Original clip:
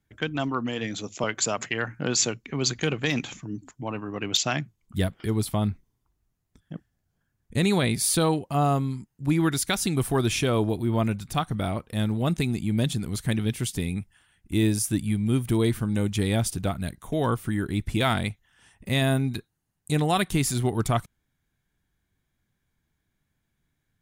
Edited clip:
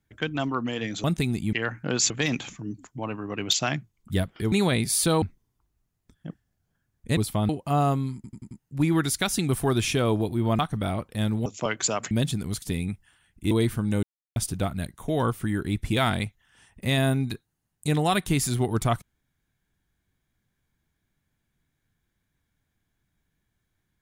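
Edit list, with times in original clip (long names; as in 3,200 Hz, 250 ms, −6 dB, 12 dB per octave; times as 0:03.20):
0:01.04–0:01.69: swap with 0:12.24–0:12.73
0:02.26–0:02.94: remove
0:05.36–0:05.68: swap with 0:07.63–0:08.33
0:08.99: stutter 0.09 s, 5 plays
0:11.07–0:11.37: remove
0:13.24–0:13.70: remove
0:14.59–0:15.55: remove
0:16.07–0:16.40: silence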